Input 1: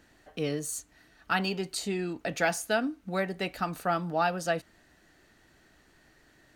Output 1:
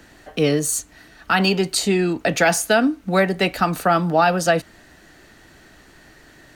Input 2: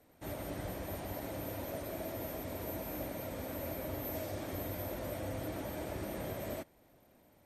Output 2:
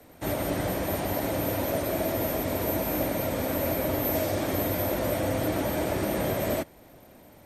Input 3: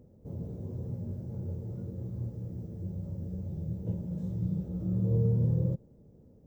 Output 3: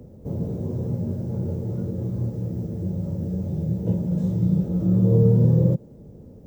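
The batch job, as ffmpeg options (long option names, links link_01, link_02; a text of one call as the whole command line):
ffmpeg -i in.wav -filter_complex "[0:a]acrossover=split=110|320[link_01][link_02][link_03];[link_01]acompressor=threshold=-51dB:ratio=6[link_04];[link_04][link_02][link_03]amix=inputs=3:normalize=0,alimiter=level_in=18dB:limit=-1dB:release=50:level=0:latency=1,volume=-5dB" out.wav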